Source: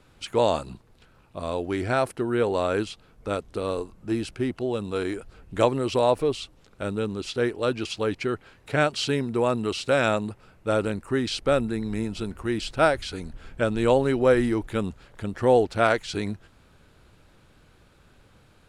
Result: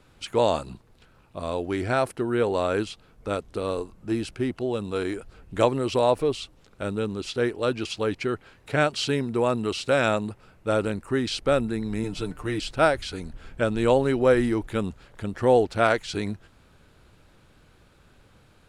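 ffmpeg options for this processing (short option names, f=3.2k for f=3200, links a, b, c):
-filter_complex "[0:a]asettb=1/sr,asplit=3[a][b][c];[a]atrim=end=12.034[d];[b]atrim=start=12.03:end=12.6,asetpts=PTS-STARTPTS,afade=t=in:d=0.004:c=qsin,afade=t=out:st=0.566:d=0.004:c=qsin,aecho=1:1:6.7:0.65,atrim=end_sample=25137[e];[c]atrim=start=12.596[f];[d][e]acrossfade=d=0.004:c1=hsin:c2=qsin[g];[g][f]acrossfade=d=0.004:c1=qsin:c2=hsin"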